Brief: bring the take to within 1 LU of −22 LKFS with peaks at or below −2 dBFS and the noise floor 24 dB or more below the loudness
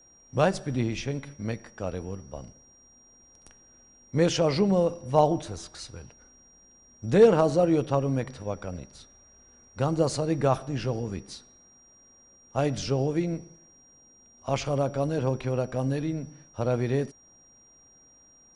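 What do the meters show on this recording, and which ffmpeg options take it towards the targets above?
interfering tone 5,700 Hz; level of the tone −55 dBFS; integrated loudness −27.0 LKFS; sample peak −8.5 dBFS; target loudness −22.0 LKFS
→ -af "bandreject=frequency=5700:width=30"
-af "volume=5dB"

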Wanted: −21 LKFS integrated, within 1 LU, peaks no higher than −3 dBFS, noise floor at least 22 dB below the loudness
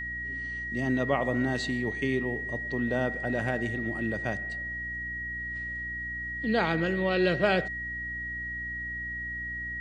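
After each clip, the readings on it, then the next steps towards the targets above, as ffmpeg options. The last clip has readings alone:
mains hum 60 Hz; hum harmonics up to 300 Hz; level of the hum −42 dBFS; interfering tone 1,900 Hz; level of the tone −33 dBFS; integrated loudness −30.0 LKFS; sample peak −11.5 dBFS; target loudness −21.0 LKFS
→ -af "bandreject=frequency=60:width_type=h:width=4,bandreject=frequency=120:width_type=h:width=4,bandreject=frequency=180:width_type=h:width=4,bandreject=frequency=240:width_type=h:width=4,bandreject=frequency=300:width_type=h:width=4"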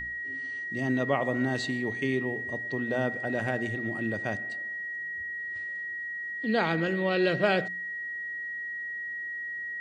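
mains hum none found; interfering tone 1,900 Hz; level of the tone −33 dBFS
→ -af "bandreject=frequency=1900:width=30"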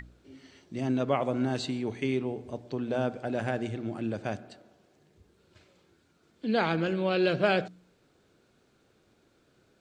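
interfering tone none found; integrated loudness −30.5 LKFS; sample peak −11.5 dBFS; target loudness −21.0 LKFS
→ -af "volume=9.5dB,alimiter=limit=-3dB:level=0:latency=1"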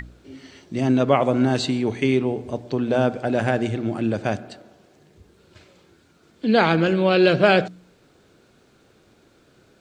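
integrated loudness −21.0 LKFS; sample peak −3.0 dBFS; background noise floor −58 dBFS

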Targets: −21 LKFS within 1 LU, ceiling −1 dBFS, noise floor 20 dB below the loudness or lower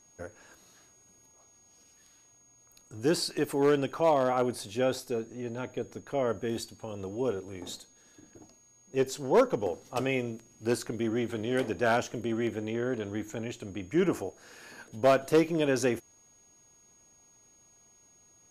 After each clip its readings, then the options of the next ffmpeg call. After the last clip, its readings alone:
interfering tone 6,600 Hz; level of the tone −59 dBFS; integrated loudness −30.0 LKFS; sample peak −12.0 dBFS; target loudness −21.0 LKFS
→ -af "bandreject=frequency=6600:width=30"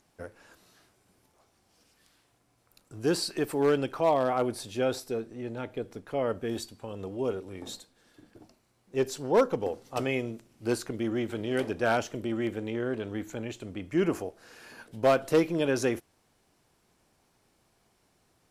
interfering tone none found; integrated loudness −30.0 LKFS; sample peak −12.0 dBFS; target loudness −21.0 LKFS
→ -af "volume=9dB"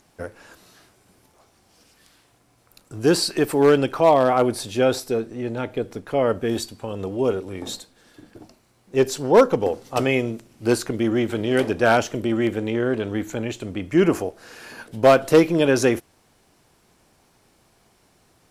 integrated loudness −21.0 LKFS; sample peak −3.0 dBFS; background noise floor −61 dBFS

